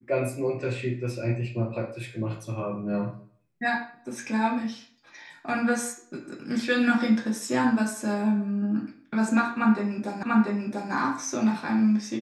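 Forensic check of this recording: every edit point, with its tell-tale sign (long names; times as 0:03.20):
0:10.23: the same again, the last 0.69 s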